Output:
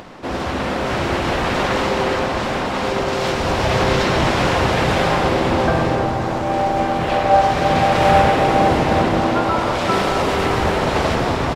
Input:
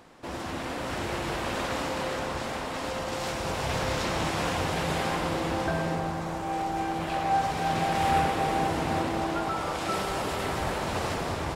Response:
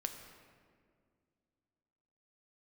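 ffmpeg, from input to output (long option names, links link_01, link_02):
-filter_complex "[0:a]asplit=2[link_01][link_02];[link_02]asetrate=33038,aresample=44100,atempo=1.33484,volume=-3dB[link_03];[link_01][link_03]amix=inputs=2:normalize=0,acompressor=mode=upward:threshold=-43dB:ratio=2.5,asplit=2[link_04][link_05];[1:a]atrim=start_sample=2205,lowpass=6200[link_06];[link_05][link_06]afir=irnorm=-1:irlink=0,volume=2.5dB[link_07];[link_04][link_07]amix=inputs=2:normalize=0,volume=3.5dB"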